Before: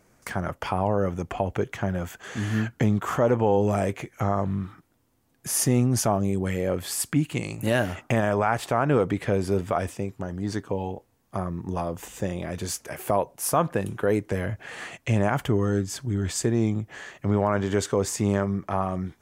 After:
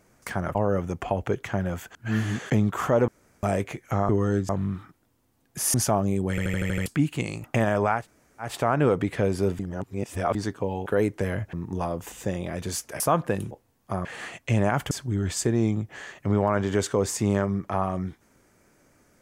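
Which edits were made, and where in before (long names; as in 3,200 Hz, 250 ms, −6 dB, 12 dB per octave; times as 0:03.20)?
0:00.55–0:00.84: remove
0:02.24–0:02.79: reverse
0:03.37–0:03.72: fill with room tone
0:05.63–0:05.91: remove
0:06.47: stutter in place 0.08 s, 7 plays
0:07.61–0:08.00: remove
0:08.55: splice in room tone 0.47 s, crossfade 0.16 s
0:09.68–0:10.44: reverse
0:10.95–0:11.49: swap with 0:13.97–0:14.64
0:12.96–0:13.46: remove
0:15.50–0:15.90: move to 0:04.38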